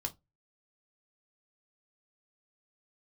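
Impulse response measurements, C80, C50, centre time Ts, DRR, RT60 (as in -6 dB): 32.5 dB, 21.5 dB, 6 ms, 3.5 dB, 0.20 s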